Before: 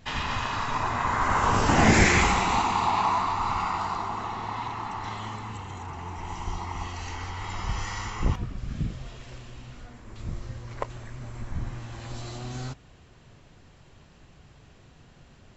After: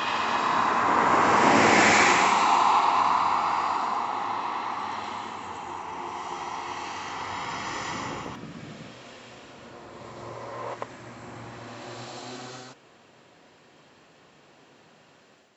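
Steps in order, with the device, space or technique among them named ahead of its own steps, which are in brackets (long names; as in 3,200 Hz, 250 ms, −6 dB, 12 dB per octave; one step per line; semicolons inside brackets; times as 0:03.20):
ghost voice (reversed playback; convolution reverb RT60 3.1 s, pre-delay 82 ms, DRR −5.5 dB; reversed playback; high-pass filter 330 Hz 12 dB per octave)
level −3 dB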